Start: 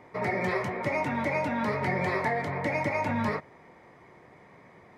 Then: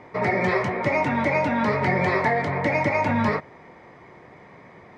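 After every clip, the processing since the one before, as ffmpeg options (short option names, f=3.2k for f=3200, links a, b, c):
-af "lowpass=6.3k,volume=6.5dB"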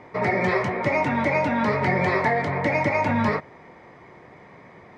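-af anull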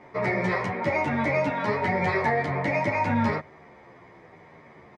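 -filter_complex "[0:a]asplit=2[a][b];[b]adelay=10.7,afreqshift=-0.84[c];[a][c]amix=inputs=2:normalize=1"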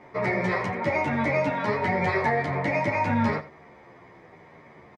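-af "aecho=1:1:86:0.141"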